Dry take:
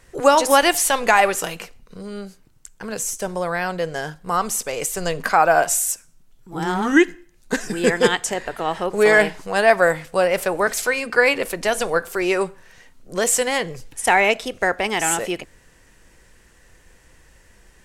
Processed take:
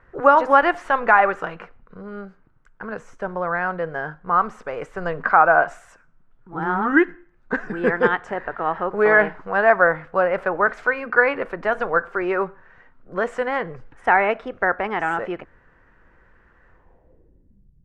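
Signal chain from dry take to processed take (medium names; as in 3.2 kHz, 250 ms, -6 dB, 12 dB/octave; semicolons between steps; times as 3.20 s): low-pass sweep 1.4 kHz -> 140 Hz, 16.69–17.72 s; trim -3 dB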